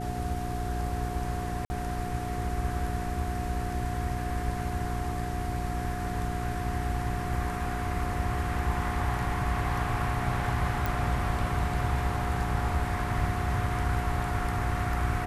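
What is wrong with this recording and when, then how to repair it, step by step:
mains hum 60 Hz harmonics 7 −34 dBFS
whistle 720 Hz −36 dBFS
0:01.65–0:01.70: drop-out 50 ms
0:10.86: click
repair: click removal
notch filter 720 Hz, Q 30
hum removal 60 Hz, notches 7
repair the gap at 0:01.65, 50 ms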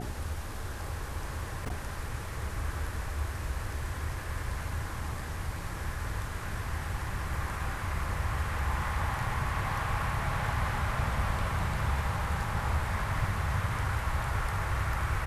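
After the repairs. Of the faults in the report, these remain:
0:10.86: click

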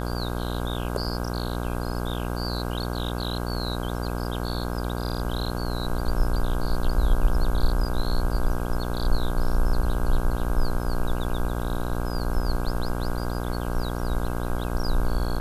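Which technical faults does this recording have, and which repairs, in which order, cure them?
mains buzz 60 Hz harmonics 27 −29 dBFS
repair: hum removal 60 Hz, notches 27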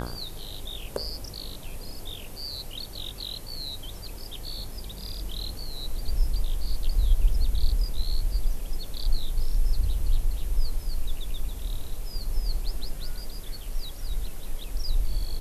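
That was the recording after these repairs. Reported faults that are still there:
none of them is left

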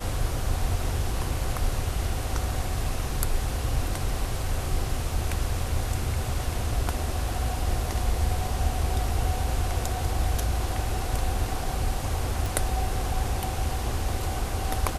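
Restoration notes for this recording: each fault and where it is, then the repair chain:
0:12.46: click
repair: click removal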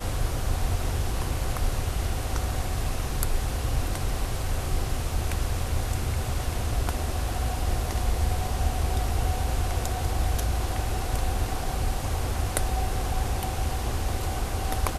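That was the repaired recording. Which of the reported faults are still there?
none of them is left

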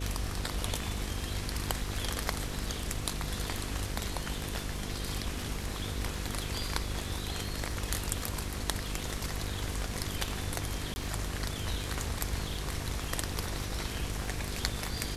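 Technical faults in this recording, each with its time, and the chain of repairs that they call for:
mains buzz 50 Hz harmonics 10 −39 dBFS
surface crackle 56 per second −42 dBFS
0:10.94–0:10.96: drop-out 20 ms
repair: click removal
hum removal 50 Hz, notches 10
repair the gap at 0:10.94, 20 ms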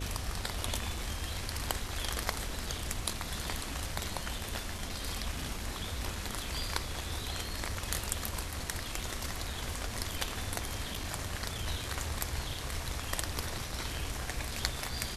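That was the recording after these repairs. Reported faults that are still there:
none of them is left

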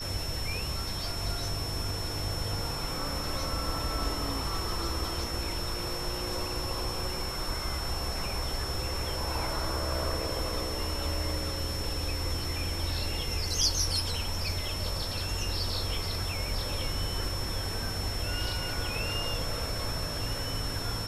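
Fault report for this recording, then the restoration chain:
whistle 5,400 Hz −37 dBFS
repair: notch filter 5,400 Hz, Q 30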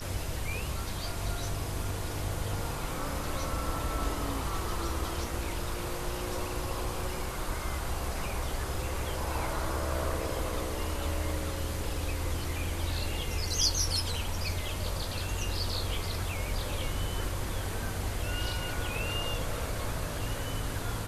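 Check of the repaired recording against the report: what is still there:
none of them is left

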